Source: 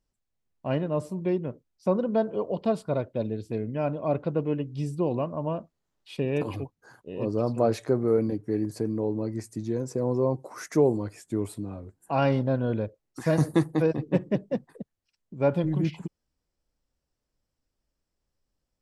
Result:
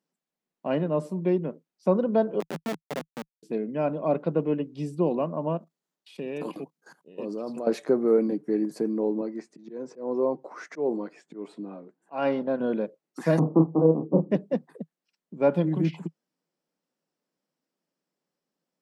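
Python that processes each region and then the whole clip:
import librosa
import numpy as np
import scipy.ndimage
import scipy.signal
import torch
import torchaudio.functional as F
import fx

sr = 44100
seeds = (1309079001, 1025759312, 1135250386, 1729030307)

y = fx.chain(x, sr, fx.law_mismatch(coded='A'),
    fx.lowpass(hz=1500.0, slope=24),
    fx.schmitt(flips_db=-25.0), at=(2.4, 3.43))
y = fx.chain(y, sr, fx.high_shelf(hz=3500.0, db=10.0),
    fx.level_steps(step_db=17), at=(5.57, 7.67))
y = fx.chain(y, sr, fx.highpass(hz=270.0, slope=6),
    fx.auto_swell(attack_ms=173.0),
    fx.air_absorb(metres=130.0), at=(9.21, 12.6))
y = fx.chain(y, sr, fx.steep_lowpass(hz=1200.0, slope=72),
    fx.doubler(ms=31.0, db=-5.5), at=(13.39, 14.31))
y = scipy.signal.sosfilt(scipy.signal.ellip(4, 1.0, 40, 160.0, 'highpass', fs=sr, output='sos'), y)
y = fx.high_shelf(y, sr, hz=4200.0, db=-6.0)
y = F.gain(torch.from_numpy(y), 2.5).numpy()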